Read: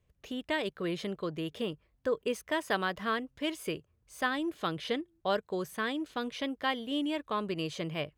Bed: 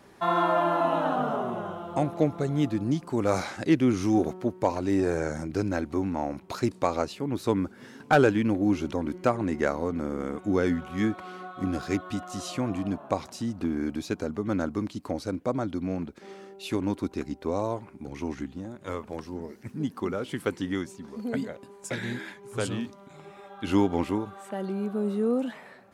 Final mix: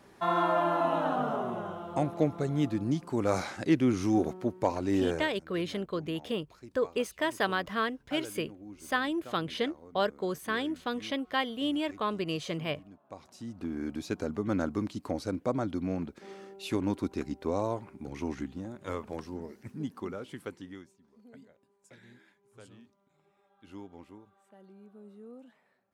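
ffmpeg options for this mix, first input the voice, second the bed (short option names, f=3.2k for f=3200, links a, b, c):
-filter_complex "[0:a]adelay=4700,volume=1.5dB[a];[1:a]volume=18dB,afade=t=out:st=5.09:d=0.21:silence=0.1,afade=t=in:st=13.05:d=1.27:silence=0.0891251,afade=t=out:st=19.09:d=1.89:silence=0.0891251[b];[a][b]amix=inputs=2:normalize=0"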